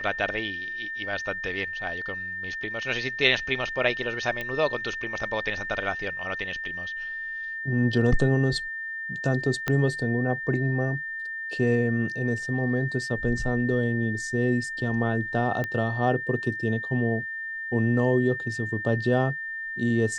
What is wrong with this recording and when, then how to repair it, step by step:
tone 1800 Hz -31 dBFS
4.41 pop -18 dBFS
9.68 pop -11 dBFS
15.64 pop -17 dBFS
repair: de-click; notch 1800 Hz, Q 30

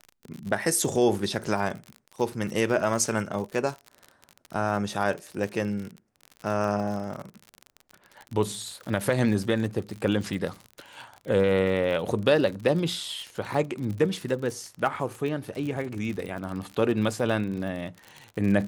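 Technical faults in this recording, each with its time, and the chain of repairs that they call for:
crackle 50/s -32 dBFS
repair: de-click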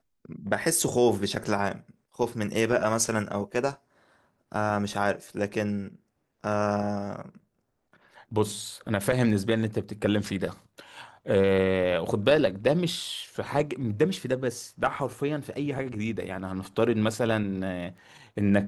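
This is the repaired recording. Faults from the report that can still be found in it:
none

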